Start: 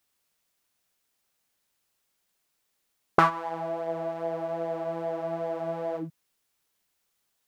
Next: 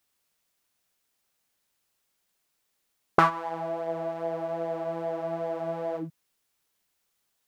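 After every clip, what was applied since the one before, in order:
no processing that can be heard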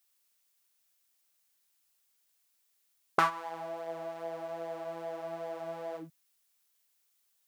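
spectral tilt +2.5 dB per octave
level −6 dB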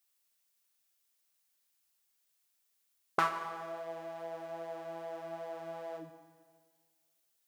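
four-comb reverb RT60 1.7 s, combs from 29 ms, DRR 8.5 dB
level −3.5 dB

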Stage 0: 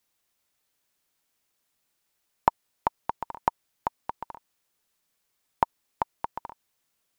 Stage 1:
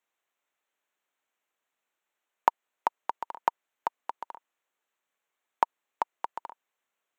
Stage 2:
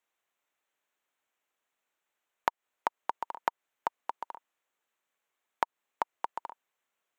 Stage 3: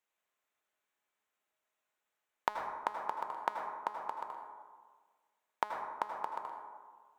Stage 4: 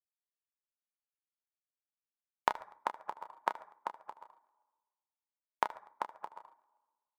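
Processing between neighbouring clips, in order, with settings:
adaptive Wiener filter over 9 samples; Bessel high-pass filter 490 Hz, order 2; high-shelf EQ 4,600 Hz +5 dB
downward compressor 6 to 1, threshold −24 dBFS, peak gain reduction 9.5 dB
tuned comb filter 210 Hz, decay 0.78 s, harmonics all, mix 70%; convolution reverb RT60 1.5 s, pre-delay 72 ms, DRR 3 dB; level +5.5 dB
reverb reduction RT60 0.78 s; reverse bouncing-ball delay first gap 30 ms, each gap 1.5×, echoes 5; expander for the loud parts 2.5 to 1, over −48 dBFS; level +3.5 dB

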